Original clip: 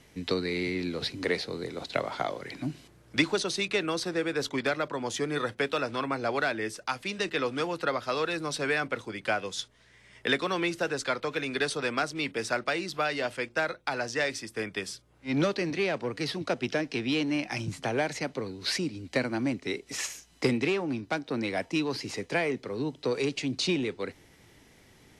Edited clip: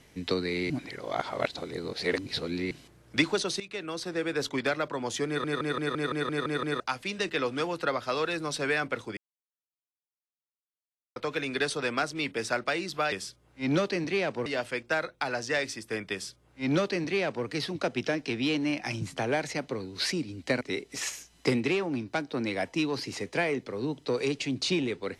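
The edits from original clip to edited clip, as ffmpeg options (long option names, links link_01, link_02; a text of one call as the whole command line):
ffmpeg -i in.wav -filter_complex "[0:a]asplit=18[link_01][link_02][link_03][link_04][link_05][link_06][link_07][link_08][link_09][link_10][link_11][link_12][link_13][link_14][link_15][link_16][link_17][link_18];[link_01]atrim=end=0.702[link_19];[link_02]atrim=start=0.698:end=2.712,asetpts=PTS-STARTPTS,areverse[link_20];[link_03]atrim=start=2.708:end=3.6,asetpts=PTS-STARTPTS,afade=type=out:start_time=0.888:duration=0.004:curve=hsin:silence=0.177828[link_21];[link_04]atrim=start=3.6:end=5.442,asetpts=PTS-STARTPTS,afade=type=in:duration=0.74:silence=0.177828[link_22];[link_05]atrim=start=5.268:end=5.442[link_23];[link_06]atrim=start=5.268:end=5.442[link_24];[link_07]atrim=start=5.268:end=5.442[link_25];[link_08]atrim=start=5.268:end=5.442[link_26];[link_09]atrim=start=5.268:end=5.442[link_27];[link_10]atrim=start=5.268:end=5.442[link_28];[link_11]atrim=start=5.268:end=5.442[link_29];[link_12]atrim=start=5.268:end=5.442[link_30];[link_13]atrim=start=6.798:end=9.17,asetpts=PTS-STARTPTS,afade=type=out:start_time=2.368:duration=0.004:curve=hsin[link_31];[link_14]atrim=start=9.17:end=11.16,asetpts=PTS-STARTPTS,volume=0[link_32];[link_15]atrim=start=11.16:end=13.122,asetpts=PTS-STARTPTS,afade=type=in:duration=0.004:curve=hsin[link_33];[link_16]atrim=start=14.778:end=16.122[link_34];[link_17]atrim=start=13.118:end=19.272[link_35];[link_18]atrim=start=19.578[link_36];[link_19][link_20]acrossfade=duration=0.004:curve1=hsin:curve2=hsin[link_37];[link_21][link_22]concat=n=2:v=0:a=1[link_38];[link_37][link_38]acrossfade=duration=0.004:curve1=hsin:curve2=hsin[link_39];[link_39][link_23]acrossfade=duration=0.004:curve1=hsin:curve2=hsin[link_40];[link_40][link_24]acrossfade=duration=0.004:curve1=hsin:curve2=hsin[link_41];[link_41][link_25]acrossfade=duration=0.004:curve1=hsin:curve2=hsin[link_42];[link_42][link_26]acrossfade=duration=0.004:curve1=hsin:curve2=hsin[link_43];[link_43][link_27]acrossfade=duration=0.004:curve1=hsin:curve2=hsin[link_44];[link_44][link_28]acrossfade=duration=0.004:curve1=hsin:curve2=hsin[link_45];[link_45][link_29]acrossfade=duration=0.004:curve1=hsin:curve2=hsin[link_46];[link_46][link_30]acrossfade=duration=0.004:curve1=hsin:curve2=hsin[link_47];[link_31][link_32][link_33]concat=n=3:v=0:a=1[link_48];[link_47][link_48]acrossfade=duration=0.004:curve1=hsin:curve2=hsin[link_49];[link_49][link_34]acrossfade=duration=0.004:curve1=hsin:curve2=hsin[link_50];[link_50][link_35]acrossfade=duration=0.004:curve1=hsin:curve2=hsin[link_51];[link_51][link_36]acrossfade=duration=0.004:curve1=hsin:curve2=hsin" out.wav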